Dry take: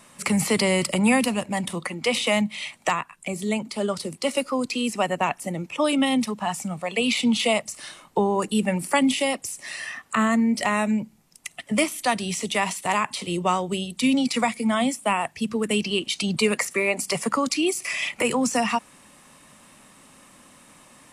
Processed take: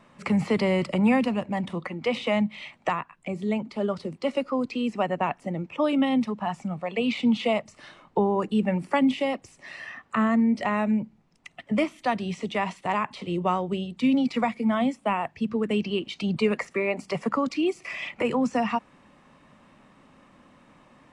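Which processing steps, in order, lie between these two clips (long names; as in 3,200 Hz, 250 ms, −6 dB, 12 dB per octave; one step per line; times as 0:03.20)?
head-to-tape spacing loss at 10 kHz 28 dB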